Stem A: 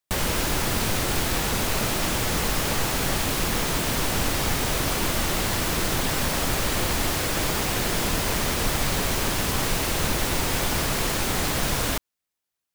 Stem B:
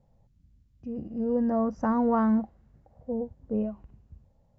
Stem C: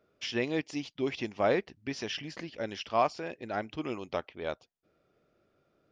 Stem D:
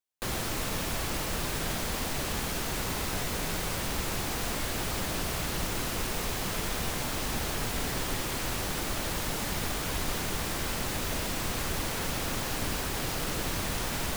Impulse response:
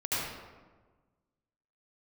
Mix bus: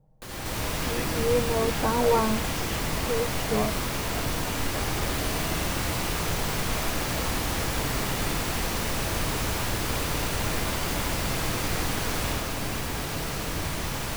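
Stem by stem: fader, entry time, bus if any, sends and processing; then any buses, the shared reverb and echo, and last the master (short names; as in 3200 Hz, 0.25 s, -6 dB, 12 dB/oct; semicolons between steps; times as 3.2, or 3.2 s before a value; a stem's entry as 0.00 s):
-13.0 dB, 0.35 s, send -3.5 dB, dry
+1.0 dB, 0.00 s, no send, LPF 1500 Hz; comb 6.5 ms, depth 76%
-6.5 dB, 0.60 s, no send, dry
-5.0 dB, 0.00 s, send -4.5 dB, auto duck -14 dB, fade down 0.40 s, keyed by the second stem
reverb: on, RT60 1.4 s, pre-delay 68 ms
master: dry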